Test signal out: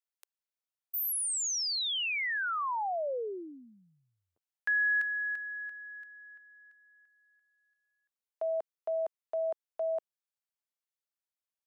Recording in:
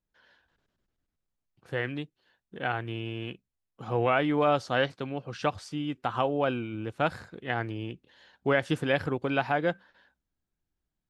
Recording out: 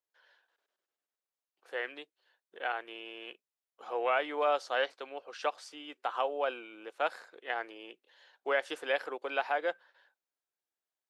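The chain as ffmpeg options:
ffmpeg -i in.wav -af "highpass=frequency=440:width=0.5412,highpass=frequency=440:width=1.3066,volume=-3.5dB" out.wav

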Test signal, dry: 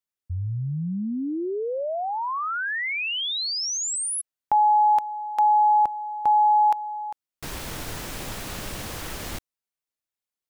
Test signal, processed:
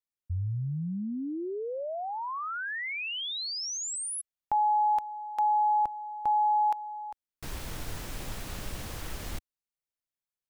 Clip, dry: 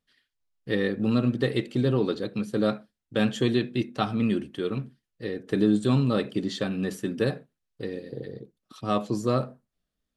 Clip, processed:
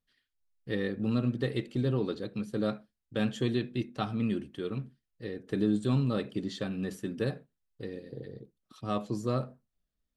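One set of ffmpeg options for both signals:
ffmpeg -i in.wav -af "lowshelf=frequency=96:gain=9,volume=-7dB" out.wav

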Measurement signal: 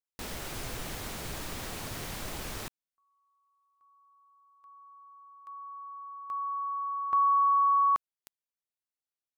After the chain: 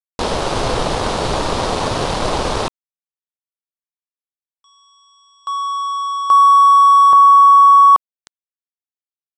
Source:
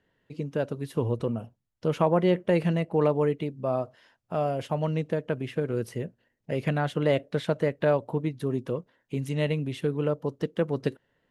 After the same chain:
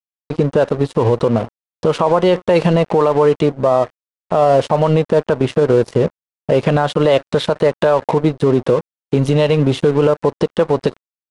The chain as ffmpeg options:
ffmpeg -i in.wav -filter_complex "[0:a]equalizer=frequency=500:width_type=o:width=1:gain=7,equalizer=frequency=1000:width_type=o:width=1:gain=8,equalizer=frequency=2000:width_type=o:width=1:gain=-8,equalizer=frequency=4000:width_type=o:width=1:gain=4,equalizer=frequency=8000:width_type=o:width=1:gain=-7,acrossover=split=1100|6700[link_01][link_02][link_03];[link_01]acompressor=threshold=-25dB:ratio=5[link_04];[link_02]acompressor=threshold=-27dB:ratio=2[link_05];[link_03]acompressor=threshold=-56dB:ratio=1.5[link_06];[link_04][link_05][link_06]amix=inputs=3:normalize=0,aeval=exprs='sgn(val(0))*max(abs(val(0))-0.00531,0)':channel_layout=same,aresample=22050,aresample=44100,alimiter=level_in=23dB:limit=-1dB:release=50:level=0:latency=1,volume=-3dB" out.wav

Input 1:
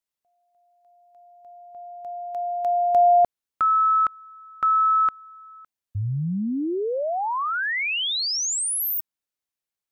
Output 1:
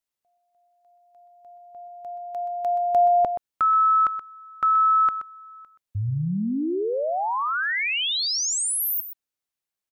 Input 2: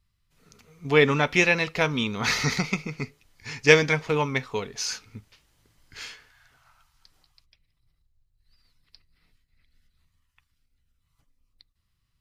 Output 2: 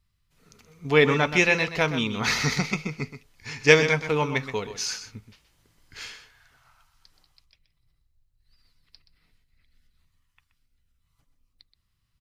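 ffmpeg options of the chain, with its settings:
ffmpeg -i in.wav -af "aecho=1:1:126:0.282" out.wav

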